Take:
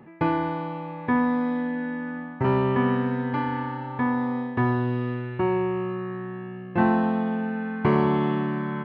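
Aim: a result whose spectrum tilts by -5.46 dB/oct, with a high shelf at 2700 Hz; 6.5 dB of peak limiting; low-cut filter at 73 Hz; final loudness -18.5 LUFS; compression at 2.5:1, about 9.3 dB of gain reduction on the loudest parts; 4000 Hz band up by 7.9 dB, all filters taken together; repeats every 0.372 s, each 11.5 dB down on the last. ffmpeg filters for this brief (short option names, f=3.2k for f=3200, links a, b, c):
-af "highpass=73,highshelf=f=2.7k:g=8.5,equalizer=f=4k:t=o:g=4.5,acompressor=threshold=-30dB:ratio=2.5,alimiter=limit=-23dB:level=0:latency=1,aecho=1:1:372|744|1116:0.266|0.0718|0.0194,volume=14.5dB"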